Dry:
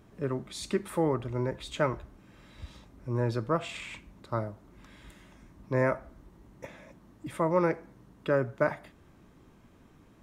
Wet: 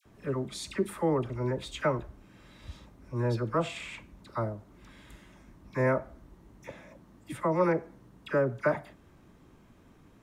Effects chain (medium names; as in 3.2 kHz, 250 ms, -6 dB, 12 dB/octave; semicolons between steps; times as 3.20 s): phase dispersion lows, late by 58 ms, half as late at 1.3 kHz